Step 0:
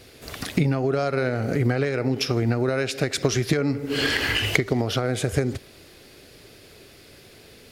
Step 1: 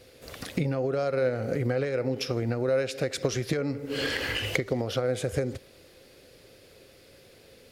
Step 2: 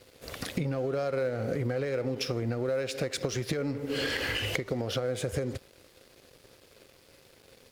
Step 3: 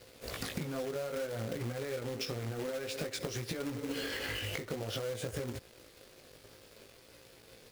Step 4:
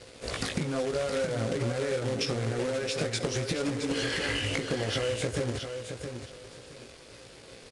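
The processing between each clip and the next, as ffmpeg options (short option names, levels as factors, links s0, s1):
-af "equalizer=f=520:t=o:w=0.2:g=12,volume=0.447"
-filter_complex "[0:a]asplit=2[s0][s1];[s1]asoftclip=type=hard:threshold=0.0376,volume=0.447[s2];[s0][s2]amix=inputs=2:normalize=0,acompressor=threshold=0.0398:ratio=3,aeval=exprs='sgn(val(0))*max(abs(val(0))-0.00237,0)':c=same"
-af "flanger=delay=17:depth=2.5:speed=0.55,acrusher=bits=2:mode=log:mix=0:aa=0.000001,acompressor=threshold=0.0141:ratio=6,volume=1.41"
-af "aecho=1:1:669|1338|2007:0.422|0.0928|0.0204,aresample=22050,aresample=44100,volume=2.24"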